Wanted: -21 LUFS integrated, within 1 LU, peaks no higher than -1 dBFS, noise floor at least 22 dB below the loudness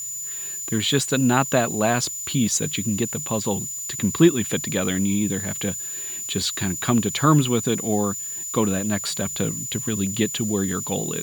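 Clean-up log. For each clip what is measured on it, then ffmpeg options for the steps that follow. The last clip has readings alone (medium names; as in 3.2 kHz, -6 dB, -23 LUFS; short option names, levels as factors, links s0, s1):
steady tone 7 kHz; tone level -29 dBFS; noise floor -32 dBFS; noise floor target -45 dBFS; loudness -22.5 LUFS; peak level -3.5 dBFS; loudness target -21.0 LUFS
-> -af "bandreject=f=7000:w=30"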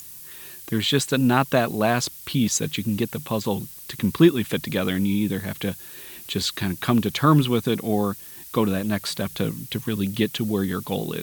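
steady tone not found; noise floor -41 dBFS; noise floor target -46 dBFS
-> -af "afftdn=nr=6:nf=-41"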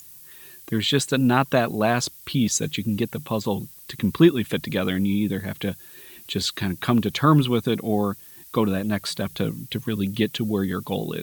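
noise floor -46 dBFS; loudness -23.5 LUFS; peak level -4.0 dBFS; loudness target -21.0 LUFS
-> -af "volume=1.33"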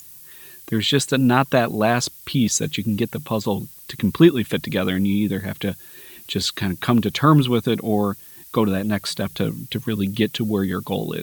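loudness -21.0 LUFS; peak level -1.5 dBFS; noise floor -43 dBFS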